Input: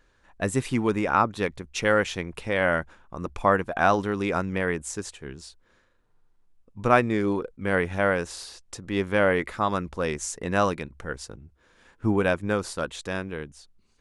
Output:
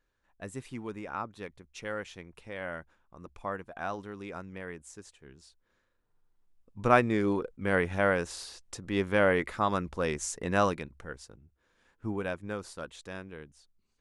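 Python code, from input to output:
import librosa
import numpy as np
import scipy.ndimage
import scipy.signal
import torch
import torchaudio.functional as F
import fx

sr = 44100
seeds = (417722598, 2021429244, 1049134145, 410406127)

y = fx.gain(x, sr, db=fx.line((5.14, -15.0), (6.9, -3.0), (10.66, -3.0), (11.3, -11.0)))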